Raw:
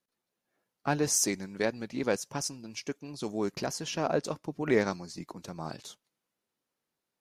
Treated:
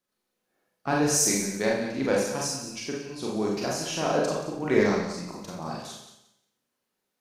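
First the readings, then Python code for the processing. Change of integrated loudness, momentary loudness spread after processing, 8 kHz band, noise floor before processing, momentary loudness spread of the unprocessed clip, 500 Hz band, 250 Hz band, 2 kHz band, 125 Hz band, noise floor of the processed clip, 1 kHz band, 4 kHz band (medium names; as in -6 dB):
+5.0 dB, 14 LU, +5.0 dB, under -85 dBFS, 14 LU, +5.0 dB, +5.5 dB, +5.0 dB, +4.0 dB, -81 dBFS, +5.0 dB, +5.0 dB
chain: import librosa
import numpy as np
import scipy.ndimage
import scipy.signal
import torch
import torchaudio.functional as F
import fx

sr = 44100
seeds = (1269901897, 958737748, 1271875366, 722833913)

y = fx.echo_feedback(x, sr, ms=178, feedback_pct=22, wet_db=-11.0)
y = fx.rev_schroeder(y, sr, rt60_s=0.6, comb_ms=30, drr_db=-3.0)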